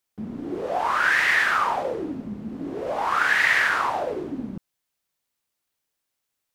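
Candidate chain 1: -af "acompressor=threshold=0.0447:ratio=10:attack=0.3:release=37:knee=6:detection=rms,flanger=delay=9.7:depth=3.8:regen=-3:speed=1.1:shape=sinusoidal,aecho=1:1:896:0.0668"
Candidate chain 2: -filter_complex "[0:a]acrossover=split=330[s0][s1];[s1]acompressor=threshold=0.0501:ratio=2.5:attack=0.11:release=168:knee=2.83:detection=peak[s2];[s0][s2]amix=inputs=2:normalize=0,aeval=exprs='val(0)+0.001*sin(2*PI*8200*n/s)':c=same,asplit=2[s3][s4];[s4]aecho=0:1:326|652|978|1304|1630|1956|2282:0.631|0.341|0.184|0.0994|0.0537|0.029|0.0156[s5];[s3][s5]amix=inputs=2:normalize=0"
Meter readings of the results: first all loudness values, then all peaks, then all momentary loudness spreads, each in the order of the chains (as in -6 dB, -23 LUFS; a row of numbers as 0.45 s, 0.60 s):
-35.5 LUFS, -28.0 LUFS; -25.0 dBFS, -15.5 dBFS; 6 LU, 14 LU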